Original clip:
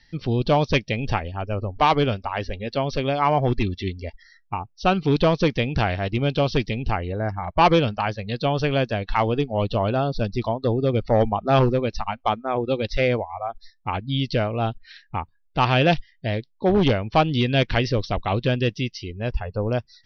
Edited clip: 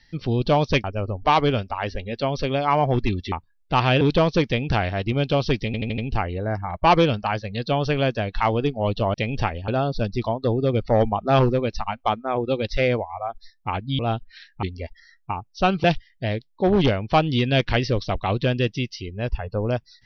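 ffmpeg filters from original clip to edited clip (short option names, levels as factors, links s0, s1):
-filter_complex "[0:a]asplit=13[s0][s1][s2][s3][s4][s5][s6][s7][s8][s9][s10][s11][s12];[s0]atrim=end=0.842[s13];[s1]atrim=start=1.378:end=3.862[s14];[s2]atrim=start=15.168:end=15.862[s15];[s3]atrim=start=5.068:end=6.802[s16];[s4]atrim=start=6.718:end=6.802[s17];[s5]atrim=start=6.718:end=6.802[s18];[s6]atrim=start=6.718:end=6.802[s19];[s7]atrim=start=6.718:end=9.882[s20];[s8]atrim=start=0.838:end=1.382[s21];[s9]atrim=start=9.878:end=14.192[s22];[s10]atrim=start=14.528:end=15.172[s23];[s11]atrim=start=3.858:end=5.072[s24];[s12]atrim=start=15.858[s25];[s13][s14]acrossfade=d=0.004:c1=hsin:c2=hsin[s26];[s26][s15]acrossfade=d=0.004:c1=hsin:c2=hsin[s27];[s27][s16]acrossfade=d=0.004:c1=hsin:c2=hsin[s28];[s28][s17]acrossfade=d=0.004:c1=hsin:c2=hsin[s29];[s29][s18]acrossfade=d=0.004:c1=hsin:c2=hsin[s30];[s30][s19]acrossfade=d=0.004:c1=hsin:c2=hsin[s31];[s31][s20]acrossfade=d=0.004:c1=hsin:c2=hsin[s32];[s32][s21]acrossfade=d=0.004:c1=hsin:c2=hsin[s33];[s33][s22]acrossfade=d=0.004:c1=hsin:c2=hsin[s34];[s34][s23]acrossfade=d=0.004:c1=hsin:c2=hsin[s35];[s35][s24]acrossfade=d=0.004:c1=hsin:c2=hsin[s36];[s36][s25]acrossfade=d=0.004:c1=hsin:c2=hsin"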